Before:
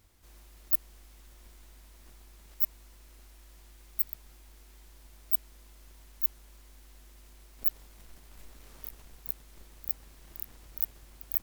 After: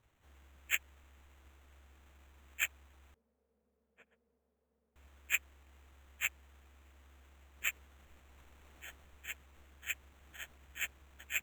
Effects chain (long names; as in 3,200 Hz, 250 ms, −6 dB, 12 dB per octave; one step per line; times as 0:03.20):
partials spread apart or drawn together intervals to 80%
decimation without filtering 9×
0:03.14–0:04.96: pair of resonant band-passes 320 Hz, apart 1 octave
level −6.5 dB